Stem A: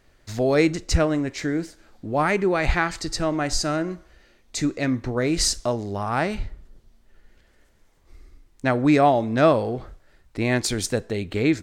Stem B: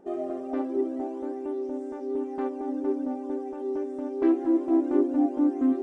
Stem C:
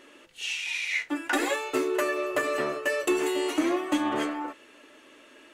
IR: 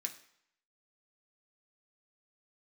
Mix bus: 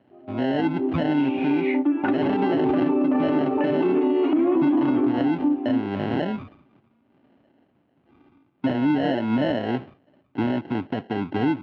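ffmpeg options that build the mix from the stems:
-filter_complex "[0:a]lowpass=frequency=2500:width=0.5412,lowpass=frequency=2500:width=1.3066,acrusher=samples=37:mix=1:aa=0.000001,volume=2.5dB,asplit=2[link_01][link_02];[1:a]equalizer=frequency=930:width=4.4:gain=13.5,dynaudnorm=framelen=130:gausssize=21:maxgain=8.5dB,adelay=50,volume=-4dB[link_03];[2:a]tiltshelf=frequency=880:gain=7.5,adelay=750,volume=-1dB[link_04];[link_02]apad=whole_len=259276[link_05];[link_03][link_05]sidechaingate=range=-15dB:threshold=-44dB:ratio=16:detection=peak[link_06];[link_06][link_04]amix=inputs=2:normalize=0,dynaudnorm=framelen=240:gausssize=13:maxgain=11.5dB,alimiter=limit=-10.5dB:level=0:latency=1:release=23,volume=0dB[link_07];[link_01][link_07]amix=inputs=2:normalize=0,highpass=frequency=120:width=0.5412,highpass=frequency=120:width=1.3066,equalizer=frequency=270:width_type=q:width=4:gain=9,equalizer=frequency=480:width_type=q:width=4:gain=-5,equalizer=frequency=1800:width_type=q:width=4:gain=-6,lowpass=frequency=2900:width=0.5412,lowpass=frequency=2900:width=1.3066,alimiter=limit=-13.5dB:level=0:latency=1:release=126"

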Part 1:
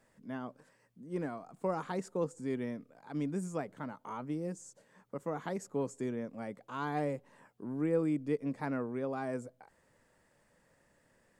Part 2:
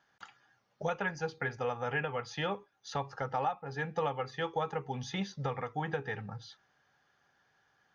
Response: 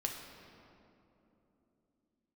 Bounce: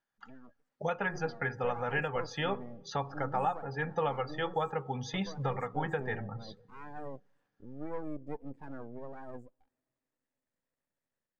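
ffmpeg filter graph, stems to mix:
-filter_complex "[0:a]aeval=exprs='max(val(0),0)':channel_layout=same,volume=-7.5dB,asplit=2[link_01][link_02];[link_02]volume=-22dB[link_03];[1:a]volume=-3.5dB,asplit=2[link_04][link_05];[link_05]volume=-15dB[link_06];[2:a]atrim=start_sample=2205[link_07];[link_03][link_06]amix=inputs=2:normalize=0[link_08];[link_08][link_07]afir=irnorm=-1:irlink=0[link_09];[link_01][link_04][link_09]amix=inputs=3:normalize=0,afftdn=noise_reduction=16:noise_floor=-52,dynaudnorm=framelen=490:gausssize=3:maxgain=3.5dB"

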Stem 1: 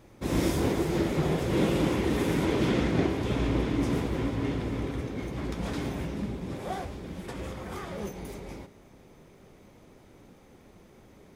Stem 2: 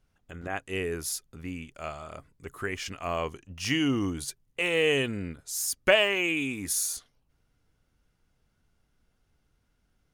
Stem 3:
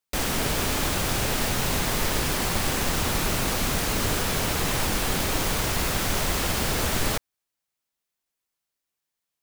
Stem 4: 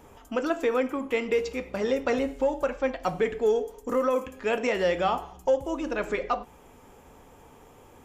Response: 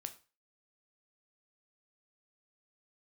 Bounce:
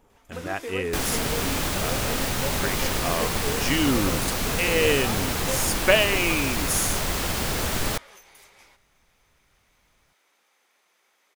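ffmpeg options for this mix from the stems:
-filter_complex "[0:a]highpass=1300,alimiter=level_in=11.5dB:limit=-24dB:level=0:latency=1,volume=-11.5dB,adelay=100,volume=-1.5dB[link_01];[1:a]volume=2.5dB[link_02];[2:a]adelay=800,volume=-1dB[link_03];[3:a]volume=-10dB[link_04];[link_01][link_02][link_03][link_04]amix=inputs=4:normalize=0"

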